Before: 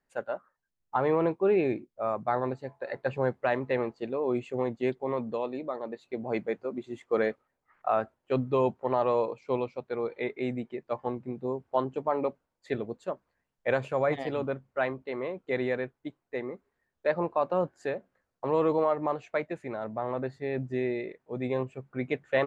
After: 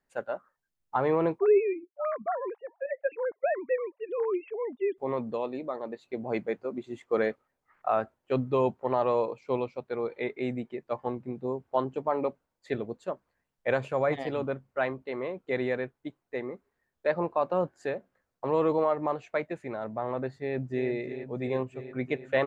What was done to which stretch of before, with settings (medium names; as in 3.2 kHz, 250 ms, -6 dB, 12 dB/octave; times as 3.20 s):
1.39–4.98 s: formants replaced by sine waves
20.42–20.89 s: echo throw 340 ms, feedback 75%, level -9.5 dB